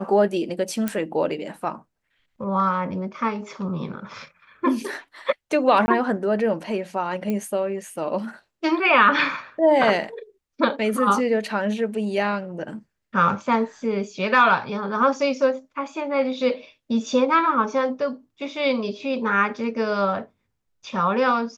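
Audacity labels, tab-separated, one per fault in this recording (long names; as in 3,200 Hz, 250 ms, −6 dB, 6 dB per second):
0.880000	0.880000	click −10 dBFS
5.860000	5.880000	drop-out 20 ms
7.300000	7.300000	click −15 dBFS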